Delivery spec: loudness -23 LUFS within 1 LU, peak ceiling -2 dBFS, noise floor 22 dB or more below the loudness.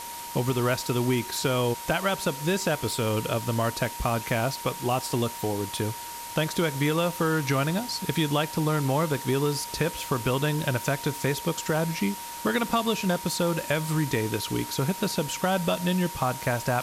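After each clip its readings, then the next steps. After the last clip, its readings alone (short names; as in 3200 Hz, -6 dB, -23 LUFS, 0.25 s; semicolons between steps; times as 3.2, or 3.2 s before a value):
steady tone 940 Hz; tone level -38 dBFS; noise floor -38 dBFS; noise floor target -49 dBFS; loudness -27.0 LUFS; peak -11.5 dBFS; loudness target -23.0 LUFS
-> notch 940 Hz, Q 30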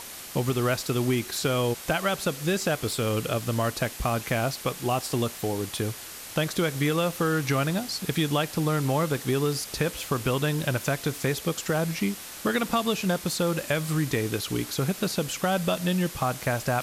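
steady tone none; noise floor -41 dBFS; noise floor target -49 dBFS
-> denoiser 8 dB, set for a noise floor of -41 dBFS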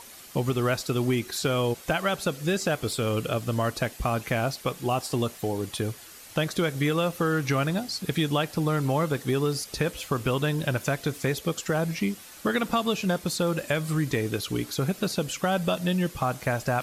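noise floor -46 dBFS; noise floor target -50 dBFS
-> denoiser 6 dB, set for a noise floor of -46 dBFS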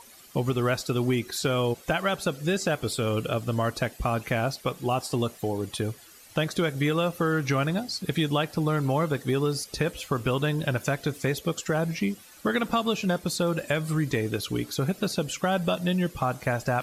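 noise floor -51 dBFS; loudness -27.5 LUFS; peak -11.5 dBFS; loudness target -23.0 LUFS
-> gain +4.5 dB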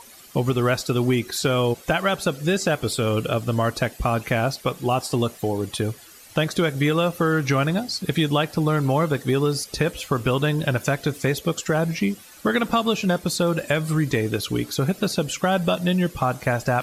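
loudness -23.0 LUFS; peak -7.0 dBFS; noise floor -46 dBFS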